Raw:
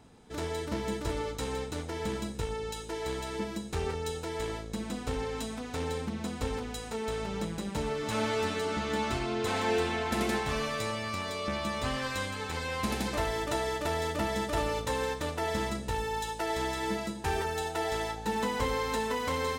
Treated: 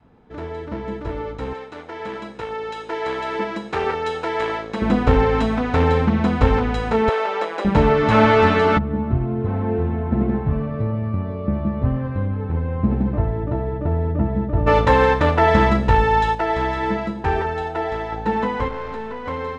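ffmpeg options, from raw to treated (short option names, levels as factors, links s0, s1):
-filter_complex "[0:a]asettb=1/sr,asplit=3[s0][s1][s2];[s0]atrim=end=1.534[s3];[s1]atrim=start=1.53:end=4.82,asetpts=PTS-STARTPTS,afade=t=in:d=0.004:c=qsin,afade=t=out:st=3.286:d=0.004:c=qsin,highpass=f=870:p=1[s4];[s2]atrim=start=4.816[s5];[s3][s4]acrossfade=d=0.004:c1=hsin:c2=qsin[s6];[s6][s5]acrossfade=d=0.004:c1=qsin:c2=hsin,asettb=1/sr,asplit=3[s7][s8][s9];[s7]atrim=end=7.094[s10];[s8]atrim=start=7.09:end=7.65,asetpts=PTS-STARTPTS,afade=t=in:d=0.004:c=qsin,afade=t=out:st=0.556:d=0.004:c=qsin,highpass=f=440:w=0.5412,highpass=f=440:w=1.3066[s11];[s9]atrim=start=7.646[s12];[s10][s11]acrossfade=d=0.004:c1=hsin:c2=qsin[s13];[s13][s12]acrossfade=d=0.004:c1=qsin:c2=hsin,asplit=3[s14][s15][s16];[s14]afade=t=out:st=8.77:d=0.02[s17];[s15]bandpass=f=110:t=q:w=0.98,afade=t=in:st=8.77:d=0.02,afade=t=out:st=14.66:d=0.02[s18];[s16]afade=t=in:st=14.66:d=0.02[s19];[s17][s18][s19]amix=inputs=3:normalize=0,asettb=1/sr,asplit=3[s20][s21][s22];[s20]atrim=end=18.684[s23];[s21]atrim=start=18.68:end=19.26,asetpts=PTS-STARTPTS,afade=t=in:d=0.004:c=qsin,afade=t=out:st=0.576:d=0.004:c=qsin,aeval=exprs='(tanh(39.8*val(0)+0.6)-tanh(0.6))/39.8':c=same[s24];[s22]atrim=start=19.256[s25];[s23][s24]acrossfade=d=0.004:c1=hsin:c2=qsin[s26];[s26][s25]acrossfade=d=0.004:c1=qsin:c2=hsin,asplit=3[s27][s28][s29];[s27]atrim=end=16.352[s30];[s28]atrim=start=16.348:end=18.122,asetpts=PTS-STARTPTS,volume=0.531[s31];[s29]atrim=start=18.118[s32];[s30][s31]acrossfade=d=0.004:c1=hsin:c2=hsin[s33];[s33][s32]acrossfade=d=0.004:c1=hsin:c2=hsin,lowpass=1900,dynaudnorm=f=600:g=9:m=6.31,adynamicequalizer=threshold=0.0316:dfrequency=370:dqfactor=0.96:tfrequency=370:tqfactor=0.96:attack=5:release=100:ratio=0.375:range=2.5:mode=cutabove:tftype=bell,volume=1.58"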